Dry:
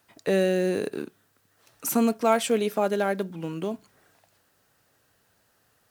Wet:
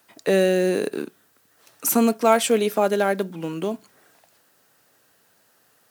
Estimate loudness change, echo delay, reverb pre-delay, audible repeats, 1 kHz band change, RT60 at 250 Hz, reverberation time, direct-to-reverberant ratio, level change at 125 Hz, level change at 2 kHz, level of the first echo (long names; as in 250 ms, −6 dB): +4.5 dB, no echo audible, no reverb audible, no echo audible, +4.5 dB, no reverb audible, no reverb audible, no reverb audible, +2.0 dB, +4.5 dB, no echo audible